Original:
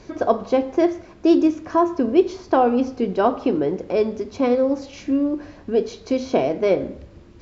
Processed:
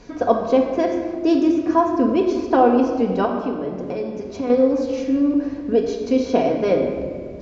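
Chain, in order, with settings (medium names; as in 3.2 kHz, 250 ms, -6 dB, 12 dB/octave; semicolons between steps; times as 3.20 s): 3.25–4.50 s: compression, threshold -25 dBFS, peak gain reduction 11.5 dB; simulated room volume 2900 m³, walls mixed, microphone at 1.8 m; trim -1 dB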